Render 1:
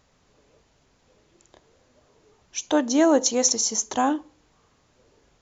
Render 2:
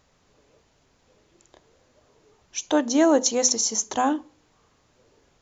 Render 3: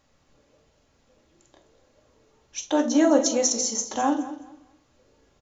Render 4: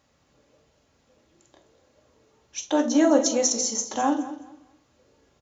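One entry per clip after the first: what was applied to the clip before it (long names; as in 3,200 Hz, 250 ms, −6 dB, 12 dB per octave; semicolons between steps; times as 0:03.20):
mains-hum notches 50/100/150/200/250 Hz
repeating echo 211 ms, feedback 24%, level −15 dB; on a send at −2.5 dB: convolution reverb, pre-delay 4 ms; on the sum: level −4 dB
high-pass filter 58 Hz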